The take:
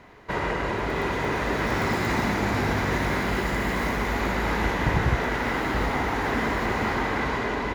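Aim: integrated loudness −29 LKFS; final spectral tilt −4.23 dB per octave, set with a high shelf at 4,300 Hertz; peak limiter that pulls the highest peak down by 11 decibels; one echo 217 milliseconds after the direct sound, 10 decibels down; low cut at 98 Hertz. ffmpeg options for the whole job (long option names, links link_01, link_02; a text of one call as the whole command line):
ffmpeg -i in.wav -af "highpass=98,highshelf=frequency=4300:gain=8.5,alimiter=limit=-22.5dB:level=0:latency=1,aecho=1:1:217:0.316,volume=1.5dB" out.wav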